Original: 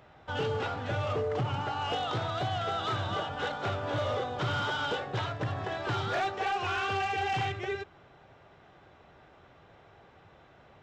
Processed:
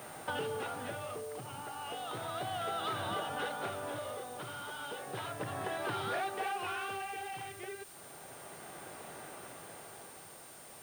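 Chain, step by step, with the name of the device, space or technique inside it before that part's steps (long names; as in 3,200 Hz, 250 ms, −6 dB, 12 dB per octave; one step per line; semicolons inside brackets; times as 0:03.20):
medium wave at night (band-pass filter 170–4,400 Hz; downward compressor 5 to 1, threshold −44 dBFS, peak gain reduction 14.5 dB; amplitude tremolo 0.33 Hz, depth 60%; steady tone 9,000 Hz −64 dBFS; white noise bed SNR 16 dB)
level +9 dB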